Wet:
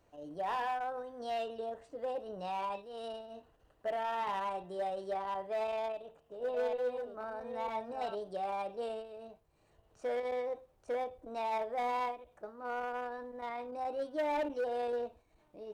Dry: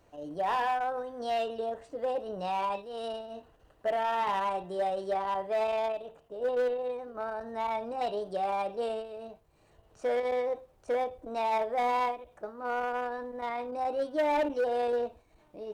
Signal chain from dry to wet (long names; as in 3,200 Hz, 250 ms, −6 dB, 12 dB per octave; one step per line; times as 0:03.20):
0:05.78–0:08.15: delay that plays each chunk backwards 476 ms, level −4 dB
level −6 dB